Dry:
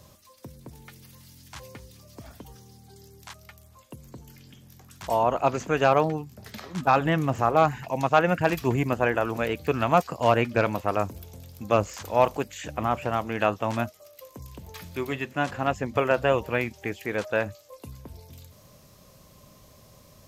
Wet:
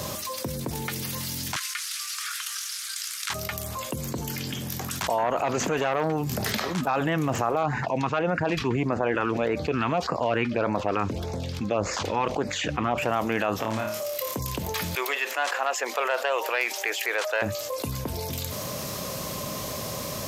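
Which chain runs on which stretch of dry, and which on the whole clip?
1.56–3.3 CVSD 64 kbps + steep high-pass 1200 Hz 72 dB/oct
5.18–6.57 upward compressor, threshold -24 dBFS + core saturation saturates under 1000 Hz
7.63–12.98 LPF 4100 Hz + LFO notch sine 1.7 Hz 590–3200 Hz
13.56–14.36 compressor, threshold -36 dBFS + flutter echo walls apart 4.7 m, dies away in 0.37 s
14.95–17.42 self-modulated delay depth 0.053 ms + Bessel high-pass 700 Hz, order 6
whole clip: HPF 210 Hz 6 dB/oct; limiter -16.5 dBFS; fast leveller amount 70%

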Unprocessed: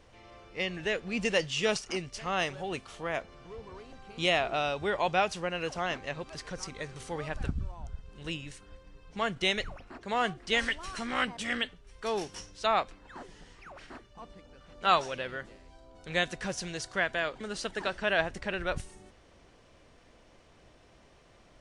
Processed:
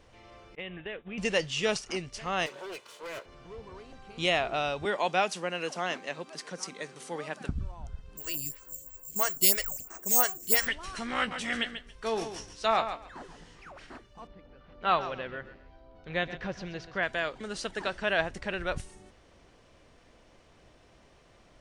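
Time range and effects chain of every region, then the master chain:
0.55–1.18 expander -36 dBFS + careless resampling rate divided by 6×, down none, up filtered + compressor 3:1, threshold -37 dBFS
2.46–3.26 minimum comb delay 2 ms + HPF 280 Hz + hard clip -36.5 dBFS
4.85–7.49 steep high-pass 170 Hz + high shelf 7400 Hz +8 dB + mismatched tape noise reduction decoder only
8.17–10.67 careless resampling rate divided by 6×, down filtered, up zero stuff + photocell phaser 3 Hz
11.17–13.71 doubler 18 ms -10.5 dB + feedback echo 0.139 s, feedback 17%, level -9.5 dB
14.27–17.03 air absorption 240 m + feedback echo 0.129 s, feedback 26%, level -13.5 dB
whole clip: dry

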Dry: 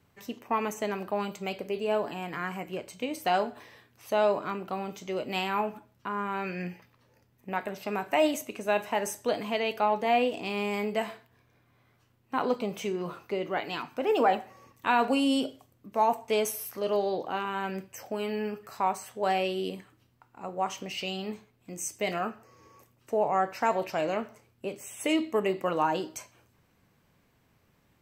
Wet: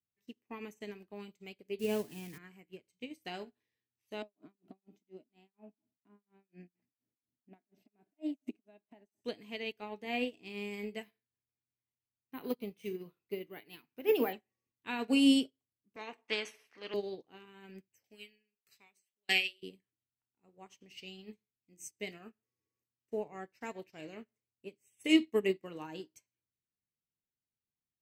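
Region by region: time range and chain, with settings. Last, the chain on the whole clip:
1.79–2.38 switching spikes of -30 dBFS + low shelf 220 Hz +11 dB + mismatched tape noise reduction decoder only
4.22–9.21 compressor 4:1, threshold -42 dBFS + tremolo 4.2 Hz, depth 97% + small resonant body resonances 270/660 Hz, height 18 dB, ringing for 25 ms
11.03–14.33 LPF 10000 Hz + careless resampling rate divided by 3×, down filtered, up hold
15.96–16.94 BPF 610–2000 Hz + spectral compressor 2:1
18.04–19.63 resonant high shelf 1600 Hz +11.5 dB, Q 1.5 + de-hum 93.89 Hz, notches 6 + dB-ramp tremolo decaying 1.6 Hz, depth 27 dB
whole clip: band shelf 890 Hz -11 dB; upward expander 2.5:1, over -48 dBFS; gain +3.5 dB

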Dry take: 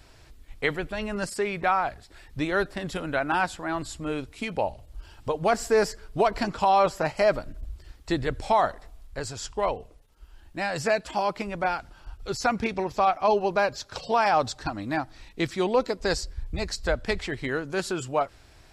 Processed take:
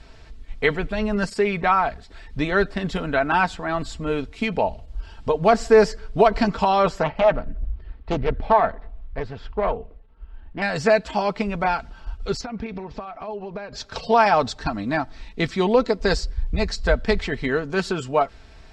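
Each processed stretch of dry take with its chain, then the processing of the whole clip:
7.03–10.62 air absorption 420 m + Doppler distortion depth 0.66 ms
12.41–13.73 compressor 8:1, threshold -34 dBFS + air absorption 150 m
whole clip: LPF 5400 Hz 12 dB/oct; low shelf 220 Hz +4 dB; comb 4.5 ms, depth 45%; gain +4 dB

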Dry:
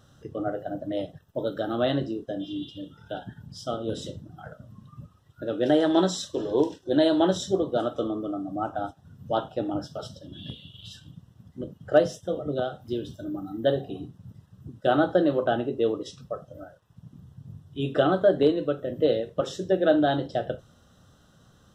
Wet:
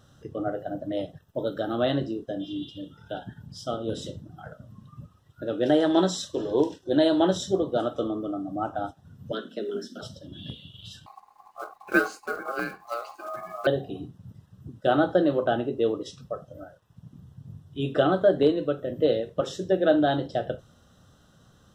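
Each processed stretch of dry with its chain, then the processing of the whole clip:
9.32–10.01 frequency shift +100 Hz + Butterworth band-stop 850 Hz, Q 0.85 + three-band squash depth 70%
11.06–13.67 block floating point 5-bit + ring modulator 940 Hz
whole clip: dry

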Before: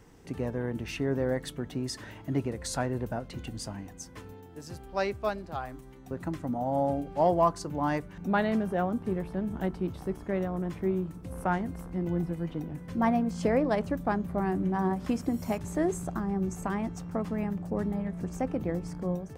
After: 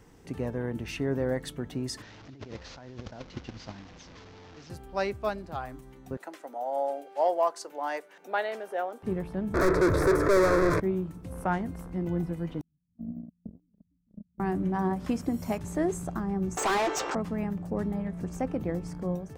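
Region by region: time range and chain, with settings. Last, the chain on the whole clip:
2.02–4.7 delta modulation 32 kbps, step -36.5 dBFS + gate -35 dBFS, range -15 dB + negative-ratio compressor -42 dBFS
6.17–9.03 HPF 440 Hz 24 dB/oct + bell 1100 Hz -6 dB 0.31 oct
9.54–10.8 tilt shelf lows +9 dB, about 1100 Hz + overdrive pedal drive 40 dB, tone 5900 Hz, clips at -12.5 dBFS + fixed phaser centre 800 Hz, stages 6
12.61–14.4 inverse Chebyshev band-stop 700–8300 Hz, stop band 60 dB + gate -30 dBFS, range -36 dB
16.57–17.15 brick-wall FIR band-pass 300–8300 Hz + overdrive pedal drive 33 dB, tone 4800 Hz, clips at -19 dBFS
whole clip: dry

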